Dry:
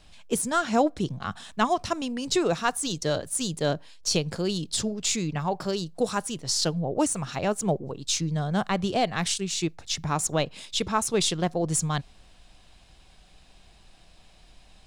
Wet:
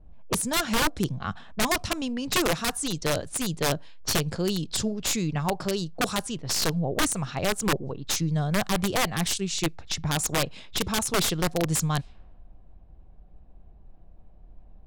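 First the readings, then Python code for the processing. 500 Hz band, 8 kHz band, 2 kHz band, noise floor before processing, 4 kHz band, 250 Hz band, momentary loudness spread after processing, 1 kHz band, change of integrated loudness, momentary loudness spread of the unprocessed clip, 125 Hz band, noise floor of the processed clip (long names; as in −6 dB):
−2.0 dB, +0.5 dB, +4.0 dB, −55 dBFS, +1.0 dB, −0.5 dB, 5 LU, −2.0 dB, 0.0 dB, 6 LU, +1.5 dB, −50 dBFS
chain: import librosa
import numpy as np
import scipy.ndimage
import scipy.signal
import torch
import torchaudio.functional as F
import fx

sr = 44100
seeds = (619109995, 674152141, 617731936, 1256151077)

y = (np.mod(10.0 ** (17.5 / 20.0) * x + 1.0, 2.0) - 1.0) / 10.0 ** (17.5 / 20.0)
y = fx.env_lowpass(y, sr, base_hz=510.0, full_db=-24.5)
y = fx.low_shelf(y, sr, hz=99.0, db=7.5)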